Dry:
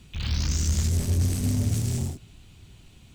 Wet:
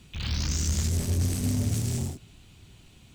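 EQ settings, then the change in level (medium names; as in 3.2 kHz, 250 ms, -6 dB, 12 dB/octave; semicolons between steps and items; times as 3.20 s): bass shelf 99 Hz -5 dB; 0.0 dB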